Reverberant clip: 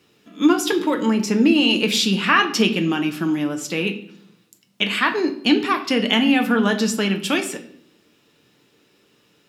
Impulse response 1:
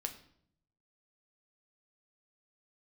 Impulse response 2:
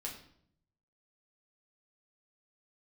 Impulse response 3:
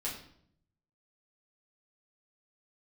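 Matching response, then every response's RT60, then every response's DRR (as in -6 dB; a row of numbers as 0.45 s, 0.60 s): 1; 0.65 s, 0.65 s, 0.65 s; 4.5 dB, -3.0 dB, -7.0 dB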